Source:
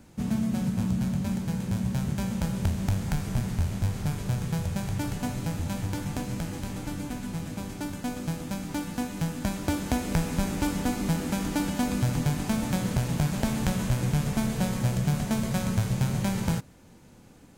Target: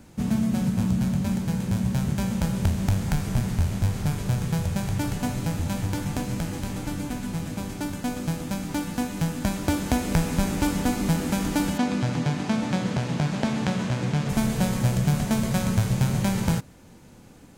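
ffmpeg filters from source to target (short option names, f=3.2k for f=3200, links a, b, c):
-filter_complex "[0:a]asplit=3[a][b][c];[a]afade=t=out:st=11.77:d=0.02[d];[b]highpass=140,lowpass=5.2k,afade=t=in:st=11.77:d=0.02,afade=t=out:st=14.28:d=0.02[e];[c]afade=t=in:st=14.28:d=0.02[f];[d][e][f]amix=inputs=3:normalize=0,volume=3.5dB"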